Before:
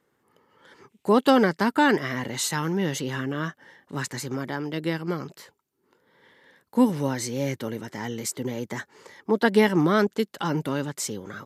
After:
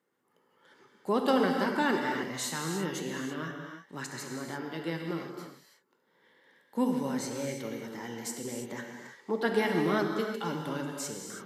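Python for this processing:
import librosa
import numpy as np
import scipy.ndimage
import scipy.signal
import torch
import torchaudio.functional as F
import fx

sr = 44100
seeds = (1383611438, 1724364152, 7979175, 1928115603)

y = scipy.signal.sosfilt(scipy.signal.butter(2, 160.0, 'highpass', fs=sr, output='sos'), x)
y = fx.rev_gated(y, sr, seeds[0], gate_ms=360, shape='flat', drr_db=1.5)
y = y * librosa.db_to_amplitude(-8.5)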